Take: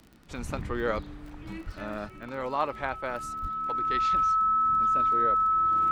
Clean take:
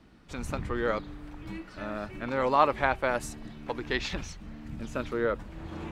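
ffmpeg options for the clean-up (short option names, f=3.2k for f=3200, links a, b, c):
-filter_complex "[0:a]adeclick=t=4,bandreject=f=1.3k:w=30,asplit=3[a][b][c];[a]afade=t=out:st=0.95:d=0.02[d];[b]highpass=f=140:w=0.5412,highpass=f=140:w=1.3066,afade=t=in:st=0.95:d=0.02,afade=t=out:st=1.07:d=0.02[e];[c]afade=t=in:st=1.07:d=0.02[f];[d][e][f]amix=inputs=3:normalize=0,asplit=3[g][h][i];[g]afade=t=out:st=1.65:d=0.02[j];[h]highpass=f=140:w=0.5412,highpass=f=140:w=1.3066,afade=t=in:st=1.65:d=0.02,afade=t=out:st=1.77:d=0.02[k];[i]afade=t=in:st=1.77:d=0.02[l];[j][k][l]amix=inputs=3:normalize=0,asplit=3[m][n][o];[m]afade=t=out:st=3.41:d=0.02[p];[n]highpass=f=140:w=0.5412,highpass=f=140:w=1.3066,afade=t=in:st=3.41:d=0.02,afade=t=out:st=3.53:d=0.02[q];[o]afade=t=in:st=3.53:d=0.02[r];[p][q][r]amix=inputs=3:normalize=0,asetnsamples=n=441:p=0,asendcmd='2.09 volume volume 6dB',volume=0dB"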